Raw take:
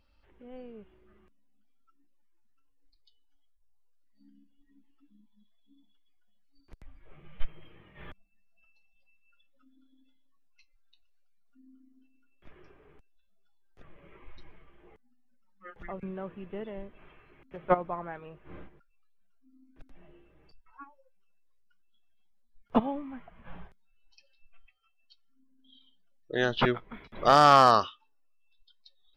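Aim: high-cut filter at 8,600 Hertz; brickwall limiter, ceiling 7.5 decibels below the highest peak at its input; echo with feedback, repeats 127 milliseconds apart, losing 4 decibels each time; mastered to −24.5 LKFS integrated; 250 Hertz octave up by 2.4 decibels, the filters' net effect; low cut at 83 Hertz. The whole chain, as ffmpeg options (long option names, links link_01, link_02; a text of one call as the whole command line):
ffmpeg -i in.wav -af "highpass=83,lowpass=8600,equalizer=frequency=250:width_type=o:gain=3,alimiter=limit=-14dB:level=0:latency=1,aecho=1:1:127|254|381|508|635|762|889|1016|1143:0.631|0.398|0.25|0.158|0.0994|0.0626|0.0394|0.0249|0.0157,volume=6dB" out.wav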